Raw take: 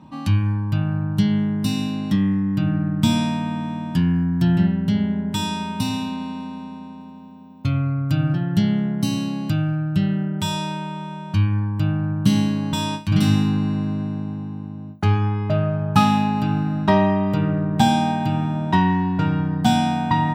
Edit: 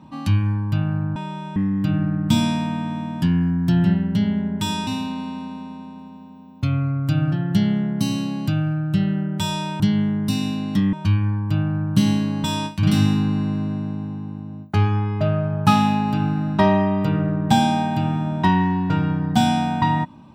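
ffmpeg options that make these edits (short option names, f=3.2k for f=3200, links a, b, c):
-filter_complex "[0:a]asplit=6[a][b][c][d][e][f];[a]atrim=end=1.162[g];[b]atrim=start=10.818:end=11.222[h];[c]atrim=start=2.288:end=5.602[i];[d]atrim=start=5.888:end=10.822[j];[e]atrim=start=1.158:end=2.292[k];[f]atrim=start=11.218[l];[g][h]acrossfade=d=0.004:c1=hsin:c2=hsin[m];[m][i]acrossfade=d=0.004:c1=hsin:c2=hsin[n];[n][j]acrossfade=d=0.004:c1=hsin:c2=hsin[o];[o][k]acrossfade=d=0.004:c1=hsin:c2=hsin[p];[p][l]acrossfade=d=0.004:c1=hsin:c2=hsin"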